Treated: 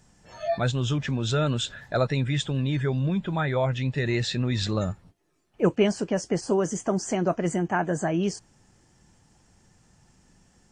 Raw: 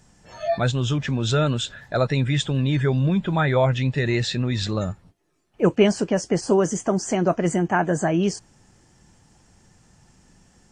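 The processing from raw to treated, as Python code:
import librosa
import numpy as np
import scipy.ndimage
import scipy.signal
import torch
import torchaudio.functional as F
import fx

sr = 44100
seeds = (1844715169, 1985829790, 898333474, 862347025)

y = fx.rider(x, sr, range_db=10, speed_s=0.5)
y = y * 10.0 ** (-4.0 / 20.0)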